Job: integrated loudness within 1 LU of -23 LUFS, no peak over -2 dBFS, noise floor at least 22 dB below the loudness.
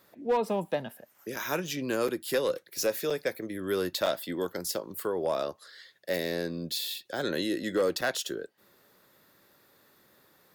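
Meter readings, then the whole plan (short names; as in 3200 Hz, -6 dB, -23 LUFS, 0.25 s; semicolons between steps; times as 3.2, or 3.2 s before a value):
clipped 0.4%; flat tops at -20.0 dBFS; dropouts 5; longest dropout 5.0 ms; loudness -31.5 LUFS; peak -20.0 dBFS; loudness target -23.0 LUFS
-> clip repair -20 dBFS; interpolate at 1.36/2.08/3.1/4.06/8.01, 5 ms; gain +8.5 dB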